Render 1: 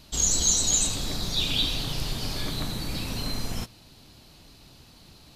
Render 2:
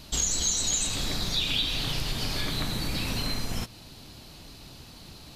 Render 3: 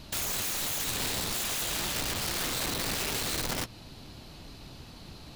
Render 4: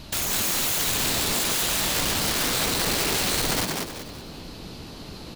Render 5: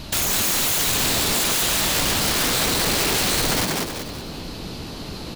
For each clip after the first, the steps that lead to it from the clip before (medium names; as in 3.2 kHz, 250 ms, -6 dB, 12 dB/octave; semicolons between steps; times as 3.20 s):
dynamic bell 2.1 kHz, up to +6 dB, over -42 dBFS, Q 0.92; compression 3:1, threshold -32 dBFS, peak gain reduction 11.5 dB; trim +5 dB
treble shelf 3.9 kHz -7 dB; integer overflow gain 28 dB; trim +1 dB
frequency-shifting echo 190 ms, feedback 36%, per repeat +150 Hz, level -3 dB; trim +5.5 dB
saturation -22.5 dBFS, distortion -14 dB; trim +6.5 dB